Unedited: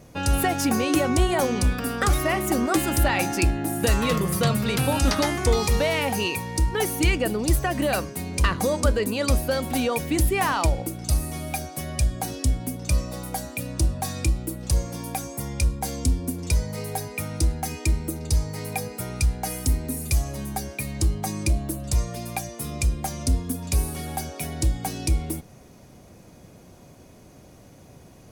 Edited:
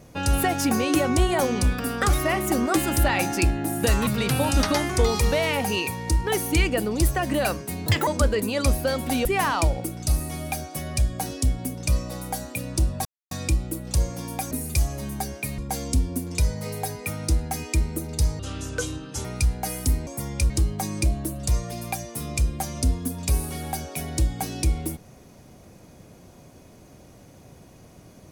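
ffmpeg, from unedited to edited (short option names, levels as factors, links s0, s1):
-filter_complex "[0:a]asplit=12[s0][s1][s2][s3][s4][s5][s6][s7][s8][s9][s10][s11];[s0]atrim=end=4.072[s12];[s1]atrim=start=4.548:end=8.344[s13];[s2]atrim=start=8.34:end=8.71,asetpts=PTS-STARTPTS,asetrate=77175,aresample=44100[s14];[s3]atrim=start=8.706:end=9.892[s15];[s4]atrim=start=10.268:end=14.07,asetpts=PTS-STARTPTS,afade=t=out:st=3.798:d=0.004:c=hsin,apad=pad_dur=0.26[s16];[s5]atrim=start=14.07:end=15.272,asetpts=PTS-STARTPTS,afade=t=in:d=0.004:c=hsin[s17];[s6]atrim=start=19.868:end=20.942[s18];[s7]atrim=start=15.698:end=18.514[s19];[s8]atrim=start=18.51:end=19.05,asetpts=PTS-STARTPTS,asetrate=27783,aresample=44100[s20];[s9]atrim=start=19.046:end=19.872[s21];[s10]atrim=start=15.268:end=15.702[s22];[s11]atrim=start=20.938[s23];[s12][s13]acrossfade=d=0.004:c1=hsin:c2=hsin[s24];[s24][s14]acrossfade=d=0.004:c1=hsin:c2=hsin[s25];[s25][s15]acrossfade=d=0.004:c1=hsin:c2=hsin[s26];[s16][s17]concat=n=2:v=0:a=1[s27];[s26][s27]acrossfade=d=0.004:c1=hsin:c2=hsin[s28];[s28][s18]acrossfade=d=0.004:c1=hsin:c2=hsin[s29];[s29][s19]acrossfade=d=0.004:c1=hsin:c2=hsin[s30];[s30][s20]acrossfade=d=0.004:c1=hsin:c2=hsin[s31];[s31][s21]acrossfade=d=0.004:c1=hsin:c2=hsin[s32];[s32][s22]acrossfade=d=0.004:c1=hsin:c2=hsin[s33];[s33][s23]acrossfade=d=0.004:c1=hsin:c2=hsin"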